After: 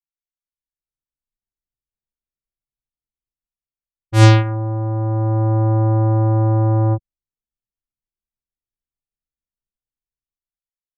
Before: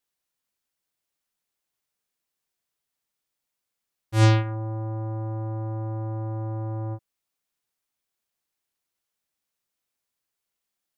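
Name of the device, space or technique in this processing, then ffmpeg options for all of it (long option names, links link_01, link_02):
voice memo with heavy noise removal: -af "anlmdn=0.631,dynaudnorm=framelen=150:gausssize=11:maxgain=16dB,volume=-1dB"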